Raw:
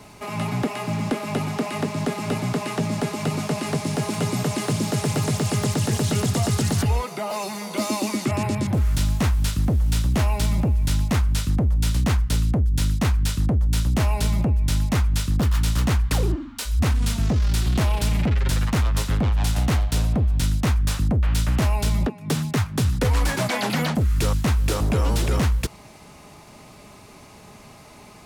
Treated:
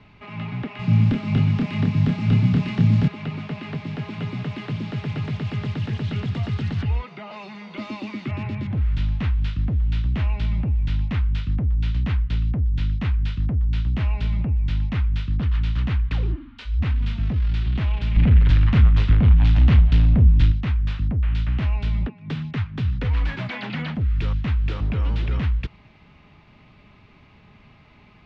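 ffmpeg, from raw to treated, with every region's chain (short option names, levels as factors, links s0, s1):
-filter_complex "[0:a]asettb=1/sr,asplit=3[s0][s1][s2];[s0]atrim=end=0.794[s3];[s1]atrim=start=0.79:end=3.08,asetpts=PTS-STARTPTS,afade=t=in:d=0.004:c=qsin,afade=t=out:st=2.286:d=0.004:c=qsin,bass=f=250:g=14,treble=f=4000:g=11,asplit=2[s4][s5];[s5]adelay=28,volume=0.631[s6];[s4][s6]amix=inputs=2:normalize=0,atrim=end_sample=100989[s7];[s2]atrim=start=3.076[s8];[s3][s7]acrossfade=d=0.004:c1=hsin:c2=qsin[s9];[s9][s8]acrossfade=d=0.004:c1=qsin:c2=hsin,asettb=1/sr,asplit=3[s10][s11][s12];[s10]atrim=end=18.164[s13];[s11]atrim=start=18.16:end=20.52,asetpts=PTS-STARTPTS,afade=t=in:d=0.004:c=qsin,afade=t=out:st=2.356:d=0.004:c=qsin,lowshelf=f=120:g=6.5,aeval=exprs='0.376*sin(PI/2*1.41*val(0)/0.376)':c=same,asplit=2[s14][s15];[s15]adelay=29,volume=0.282[s16];[s14][s16]amix=inputs=2:normalize=0,atrim=end_sample=104076[s17];[s12]atrim=start=20.516[s18];[s13][s17]acrossfade=d=0.004:c1=hsin:c2=qsin[s19];[s19][s18]acrossfade=d=0.004:c1=qsin:c2=hsin,lowpass=f=3100:w=0.5412,lowpass=f=3100:w=1.3066,equalizer=f=600:w=0.48:g=-12"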